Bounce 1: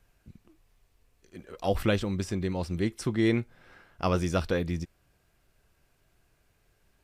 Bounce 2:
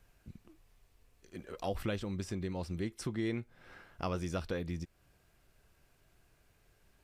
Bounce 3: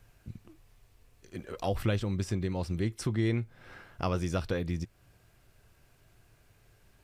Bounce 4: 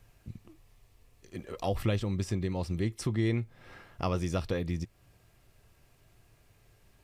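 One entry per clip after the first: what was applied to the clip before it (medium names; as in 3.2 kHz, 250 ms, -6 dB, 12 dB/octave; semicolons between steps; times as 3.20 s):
compression 2:1, threshold -40 dBFS, peak gain reduction 11 dB
peaking EQ 110 Hz +8 dB 0.38 oct; trim +4.5 dB
band-stop 1.5 kHz, Q 8.6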